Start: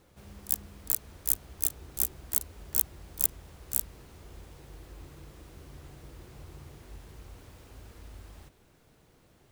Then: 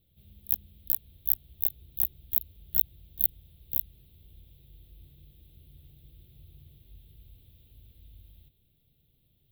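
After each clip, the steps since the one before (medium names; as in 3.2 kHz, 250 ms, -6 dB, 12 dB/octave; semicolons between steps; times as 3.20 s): FFT filter 130 Hz 0 dB, 300 Hz -11 dB, 680 Hz -17 dB, 980 Hz -27 dB, 1.6 kHz -24 dB, 3.6 kHz +2 dB, 6.2 kHz -29 dB, 14 kHz +8 dB; trim -4.5 dB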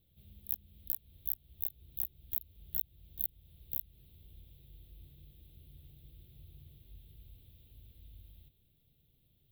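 compression 2:1, threshold -34 dBFS, peak gain reduction 10 dB; trim -2 dB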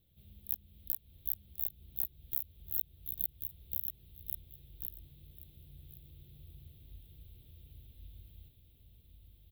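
feedback delay 1088 ms, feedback 17%, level -5 dB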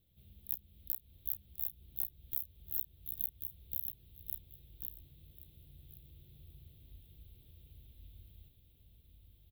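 doubling 32 ms -12.5 dB; trim -2 dB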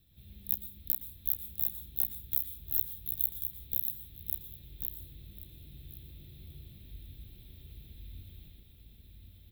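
reverberation RT60 0.50 s, pre-delay 111 ms, DRR 0 dB; trim +6 dB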